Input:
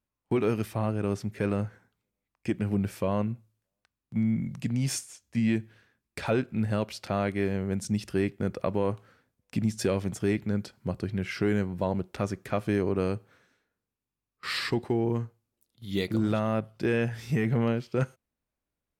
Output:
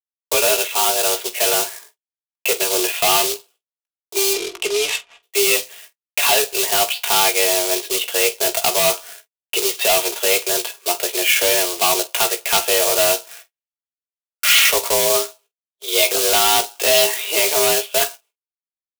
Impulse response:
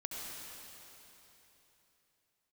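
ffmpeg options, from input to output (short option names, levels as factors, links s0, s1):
-filter_complex "[0:a]agate=range=0.00316:threshold=0.00126:ratio=16:detection=peak,equalizer=f=1000:w=0.32:g=14,aecho=1:1:4:0.57,dynaudnorm=f=240:g=17:m=3.76,asplit=2[s0][s1];[s1]asoftclip=type=hard:threshold=0.168,volume=0.316[s2];[s0][s2]amix=inputs=2:normalize=0,highpass=f=220:t=q:w=0.5412,highpass=f=220:t=q:w=1.307,lowpass=f=3200:t=q:w=0.5176,lowpass=f=3200:t=q:w=0.7071,lowpass=f=3200:t=q:w=1.932,afreqshift=170,acrusher=bits=2:mode=log:mix=0:aa=0.000001,asoftclip=type=tanh:threshold=0.224,asettb=1/sr,asplit=3[s3][s4][s5];[s3]atrim=end=4.334[s6];[s4]atrim=start=4.33:end=5.23,asetpts=PTS-STARTPTS,afade=t=in:d=0.004:c=qsin,afade=t=out:st=0.896:d=0.004:c=qsin,adynamicsmooth=sensitivity=5:basefreq=1200[s7];[s5]atrim=start=5.226[s8];[s6][s7]acrossfade=d=0.004:c1=hsin:c2=qsin[s9];[s9][s8]acrossfade=d=0.004:c1=qsin:c2=hsin,asplit=2[s10][s11];[s11]aecho=0:1:17|47:0.398|0.158[s12];[s10][s12]amix=inputs=2:normalize=0,aexciter=amount=7.4:drive=4.4:freq=2600,volume=0.75"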